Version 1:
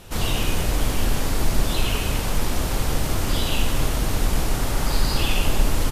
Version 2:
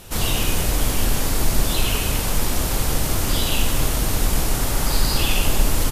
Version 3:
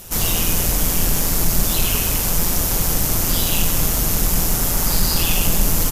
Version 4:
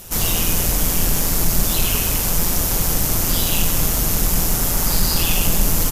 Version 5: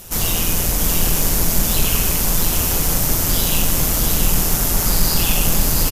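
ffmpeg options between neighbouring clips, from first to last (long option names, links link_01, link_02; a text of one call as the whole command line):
ffmpeg -i in.wav -af "highshelf=frequency=6200:gain=8,volume=1dB" out.wav
ffmpeg -i in.wav -filter_complex "[0:a]asplit=2[link_01][link_02];[link_02]asoftclip=type=hard:threshold=-13.5dB,volume=-11.5dB[link_03];[link_01][link_03]amix=inputs=2:normalize=0,aexciter=amount=1.7:drive=7.3:freq=5400,tremolo=f=170:d=0.462" out.wav
ffmpeg -i in.wav -af anull out.wav
ffmpeg -i in.wav -af "aecho=1:1:679:0.562" out.wav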